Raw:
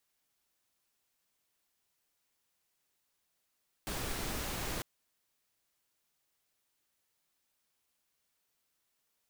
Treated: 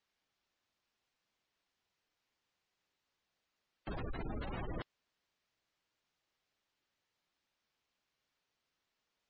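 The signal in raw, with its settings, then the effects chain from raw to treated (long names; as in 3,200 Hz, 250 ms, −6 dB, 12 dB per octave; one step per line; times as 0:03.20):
noise pink, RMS −37.5 dBFS 0.95 s
low-pass filter 4,800 Hz 12 dB per octave
gate on every frequency bin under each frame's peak −15 dB strong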